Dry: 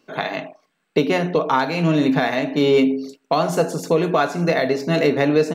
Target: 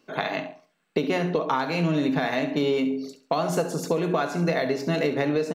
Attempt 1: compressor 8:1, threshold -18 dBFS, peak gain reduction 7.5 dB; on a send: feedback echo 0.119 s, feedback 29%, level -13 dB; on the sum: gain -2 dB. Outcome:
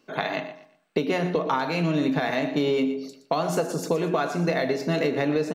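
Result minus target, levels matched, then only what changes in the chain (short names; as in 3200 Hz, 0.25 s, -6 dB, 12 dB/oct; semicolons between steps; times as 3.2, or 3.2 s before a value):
echo 50 ms late
change: feedback echo 69 ms, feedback 29%, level -13 dB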